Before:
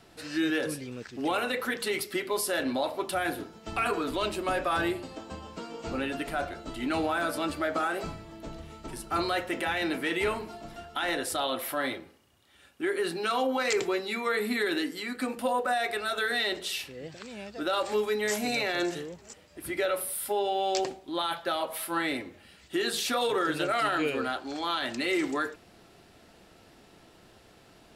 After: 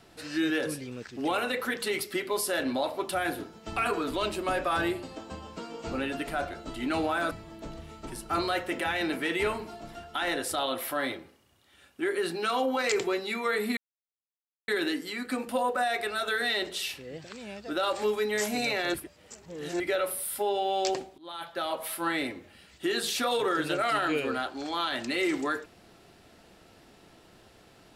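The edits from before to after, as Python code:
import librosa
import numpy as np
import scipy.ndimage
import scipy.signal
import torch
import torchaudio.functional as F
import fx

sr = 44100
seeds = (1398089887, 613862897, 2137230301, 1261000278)

y = fx.edit(x, sr, fx.cut(start_s=7.31, length_s=0.81),
    fx.insert_silence(at_s=14.58, length_s=0.91),
    fx.reverse_span(start_s=18.84, length_s=0.86),
    fx.fade_in_from(start_s=21.08, length_s=0.59, floor_db=-22.0), tone=tone)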